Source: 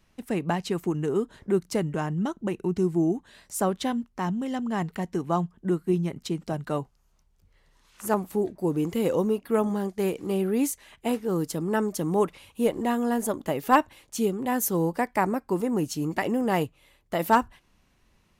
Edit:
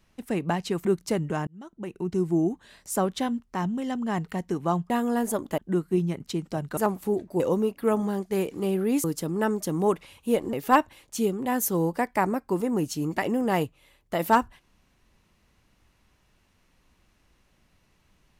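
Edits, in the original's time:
0.85–1.49 s: delete
2.11–2.94 s: fade in
6.73–8.05 s: delete
8.68–9.07 s: delete
10.71–11.36 s: delete
12.85–13.53 s: move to 5.54 s

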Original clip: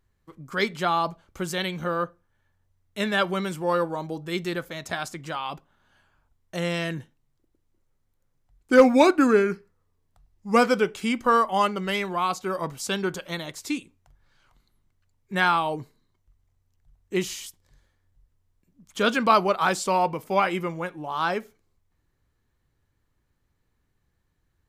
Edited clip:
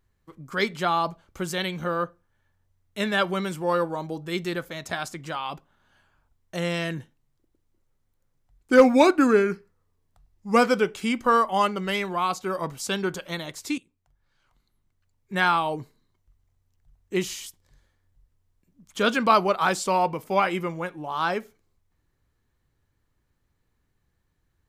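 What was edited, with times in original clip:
13.78–15.50 s: fade in, from -13.5 dB

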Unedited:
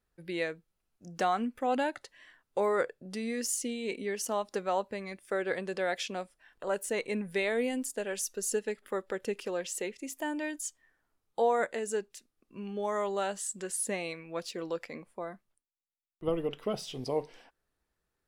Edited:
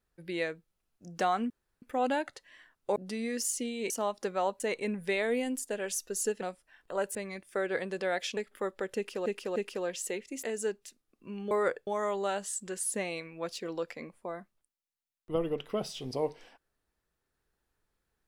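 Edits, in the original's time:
1.50 s: insert room tone 0.32 s
2.64–3.00 s: move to 12.80 s
3.94–4.21 s: delete
4.91–6.13 s: swap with 6.87–8.68 s
9.27–9.57 s: loop, 3 plays
10.14–11.72 s: delete

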